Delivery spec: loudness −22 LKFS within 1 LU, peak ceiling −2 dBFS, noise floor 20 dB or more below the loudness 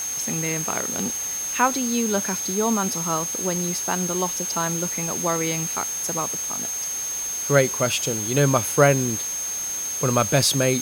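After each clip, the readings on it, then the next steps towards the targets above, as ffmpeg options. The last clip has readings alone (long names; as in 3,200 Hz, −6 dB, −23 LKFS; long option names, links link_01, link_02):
interfering tone 6,400 Hz; level of the tone −26 dBFS; background noise floor −28 dBFS; target noise floor −42 dBFS; integrated loudness −22.0 LKFS; sample peak −3.0 dBFS; target loudness −22.0 LKFS
→ -af "bandreject=frequency=6400:width=30"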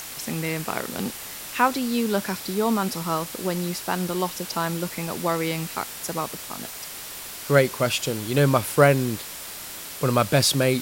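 interfering tone none found; background noise floor −37 dBFS; target noise floor −45 dBFS
→ -af "afftdn=noise_reduction=8:noise_floor=-37"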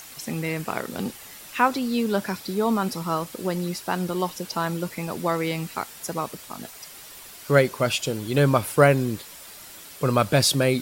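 background noise floor −44 dBFS; target noise floor −45 dBFS
→ -af "afftdn=noise_reduction=6:noise_floor=-44"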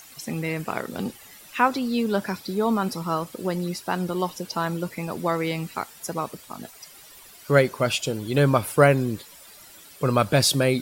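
background noise floor −48 dBFS; integrated loudness −24.5 LKFS; sample peak −3.0 dBFS; target loudness −22.0 LKFS
→ -af "volume=2.5dB,alimiter=limit=-2dB:level=0:latency=1"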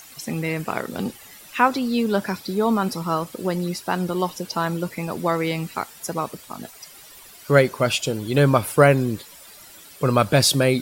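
integrated loudness −22.0 LKFS; sample peak −2.0 dBFS; background noise floor −45 dBFS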